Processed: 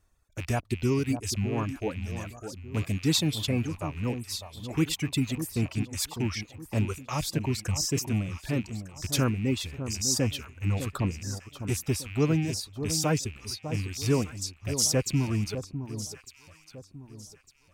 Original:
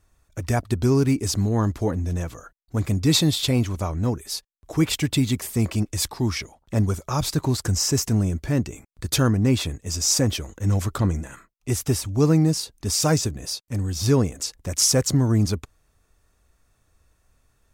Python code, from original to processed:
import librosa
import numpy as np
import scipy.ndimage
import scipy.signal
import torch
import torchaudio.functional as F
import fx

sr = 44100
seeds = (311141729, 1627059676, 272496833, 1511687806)

y = fx.rattle_buzz(x, sr, strikes_db=-33.0, level_db=-22.0)
y = fx.dereverb_blind(y, sr, rt60_s=2.0)
y = fx.echo_alternate(y, sr, ms=602, hz=1100.0, feedback_pct=55, wet_db=-9.0)
y = y * librosa.db_to_amplitude(-5.5)